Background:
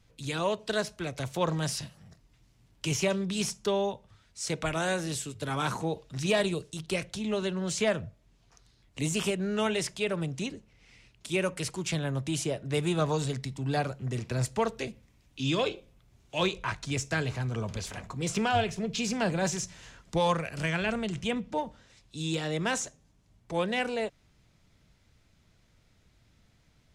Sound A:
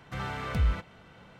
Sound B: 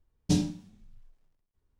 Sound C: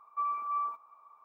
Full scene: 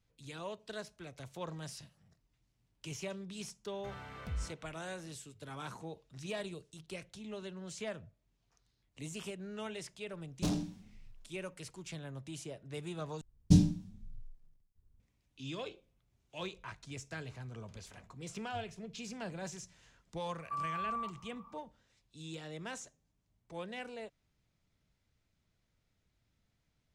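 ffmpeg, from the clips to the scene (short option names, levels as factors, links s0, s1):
-filter_complex "[2:a]asplit=2[s0][s1];[0:a]volume=0.2[s2];[s0]asoftclip=type=tanh:threshold=0.0398[s3];[s1]bass=f=250:g=14,treble=f=4000:g=3[s4];[3:a]acompressor=threshold=0.0178:ratio=6:attack=3.2:release=140:knee=1:detection=peak[s5];[s2]asplit=2[s6][s7];[s6]atrim=end=13.214[s8];[s4]atrim=end=1.79,asetpts=PTS-STARTPTS,volume=0.422[s9];[s7]atrim=start=14.996[s10];[1:a]atrim=end=1.39,asetpts=PTS-STARTPTS,volume=0.224,afade=t=in:d=0.004:c=hsin,afade=t=out:st=1.386:d=0.004:c=hsin,adelay=3720[s11];[s3]atrim=end=1.79,asetpts=PTS-STARTPTS,volume=0.891,afade=t=in:d=0.004:c=hsin,afade=t=out:st=1.786:d=0.004:c=hsin,adelay=10130[s12];[s5]atrim=end=1.24,asetpts=PTS-STARTPTS,volume=0.944,afade=t=in:d=0.004:c=hsin,afade=t=out:st=1.236:d=0.004:c=hsin,adelay=20340[s13];[s8][s9]acrossfade=d=0.004:c1=hsin:c2=hsin[s14];[s14][s10]acrossfade=d=0.004:c1=hsin:c2=hsin[s15];[s15][s11][s12][s13]amix=inputs=4:normalize=0"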